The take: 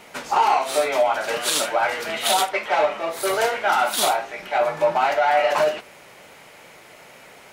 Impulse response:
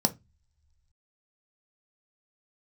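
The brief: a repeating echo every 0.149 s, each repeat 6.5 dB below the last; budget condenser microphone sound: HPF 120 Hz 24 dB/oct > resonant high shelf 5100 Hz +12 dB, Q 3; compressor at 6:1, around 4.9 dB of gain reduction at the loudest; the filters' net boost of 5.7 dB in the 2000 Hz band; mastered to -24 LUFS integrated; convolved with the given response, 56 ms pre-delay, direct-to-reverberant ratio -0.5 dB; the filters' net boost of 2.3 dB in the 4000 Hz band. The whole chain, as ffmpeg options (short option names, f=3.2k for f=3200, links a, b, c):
-filter_complex "[0:a]equalizer=f=2k:t=o:g=9,equalizer=f=4k:t=o:g=3.5,acompressor=threshold=-17dB:ratio=6,aecho=1:1:149|298|447|596|745|894:0.473|0.222|0.105|0.0491|0.0231|0.0109,asplit=2[a][b];[1:a]atrim=start_sample=2205,adelay=56[c];[b][c]afir=irnorm=-1:irlink=0,volume=-8dB[d];[a][d]amix=inputs=2:normalize=0,highpass=f=120:w=0.5412,highpass=f=120:w=1.3066,highshelf=f=5.1k:t=q:w=3:g=12,volume=-11.5dB"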